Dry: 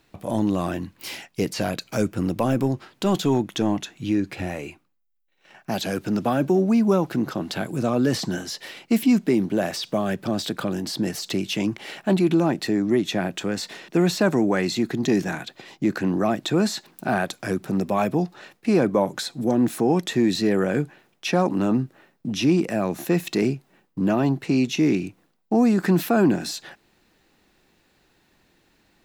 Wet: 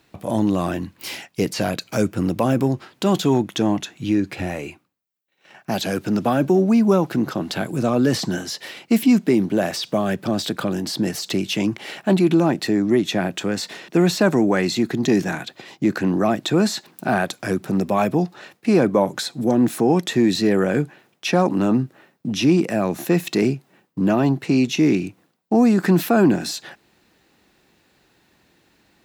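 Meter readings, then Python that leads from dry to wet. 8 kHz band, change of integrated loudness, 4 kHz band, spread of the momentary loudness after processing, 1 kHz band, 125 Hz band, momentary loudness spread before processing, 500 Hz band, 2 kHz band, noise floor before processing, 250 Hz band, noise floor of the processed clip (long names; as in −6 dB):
+3.0 dB, +3.0 dB, +3.0 dB, 11 LU, +3.0 dB, +3.0 dB, 11 LU, +3.0 dB, +3.0 dB, −65 dBFS, +3.0 dB, −62 dBFS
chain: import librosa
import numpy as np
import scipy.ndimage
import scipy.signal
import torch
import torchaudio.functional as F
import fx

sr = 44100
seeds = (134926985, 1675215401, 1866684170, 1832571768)

y = scipy.signal.sosfilt(scipy.signal.butter(2, 57.0, 'highpass', fs=sr, output='sos'), x)
y = y * 10.0 ** (3.0 / 20.0)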